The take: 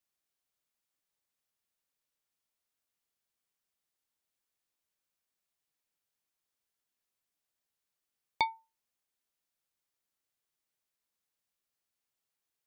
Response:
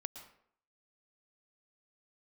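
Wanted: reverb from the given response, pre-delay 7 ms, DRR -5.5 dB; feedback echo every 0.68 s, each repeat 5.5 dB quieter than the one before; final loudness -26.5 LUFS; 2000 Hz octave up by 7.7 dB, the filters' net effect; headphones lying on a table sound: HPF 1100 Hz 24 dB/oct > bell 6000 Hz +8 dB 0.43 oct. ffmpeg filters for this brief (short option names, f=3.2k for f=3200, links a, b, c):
-filter_complex "[0:a]equalizer=f=2k:t=o:g=8.5,aecho=1:1:680|1360|2040|2720|3400|4080|4760:0.531|0.281|0.149|0.079|0.0419|0.0222|0.0118,asplit=2[a][b];[1:a]atrim=start_sample=2205,adelay=7[c];[b][c]afir=irnorm=-1:irlink=0,volume=8dB[d];[a][d]amix=inputs=2:normalize=0,highpass=f=1.1k:w=0.5412,highpass=f=1.1k:w=1.3066,equalizer=f=6k:t=o:w=0.43:g=8,volume=6.5dB"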